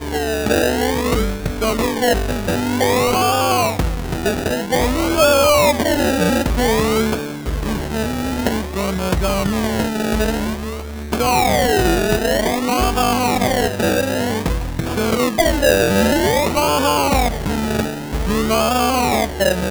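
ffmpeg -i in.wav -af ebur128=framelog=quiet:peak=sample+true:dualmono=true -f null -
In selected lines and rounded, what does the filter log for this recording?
Integrated loudness:
  I:         -14.5 LUFS
  Threshold: -24.6 LUFS
Loudness range:
  LRA:         3.9 LU
  Threshold: -34.5 LUFS
  LRA low:   -17.0 LUFS
  LRA high:  -13.1 LUFS
Sample peak:
  Peak:       -4.4 dBFS
True peak:
  Peak:       -2.6 dBFS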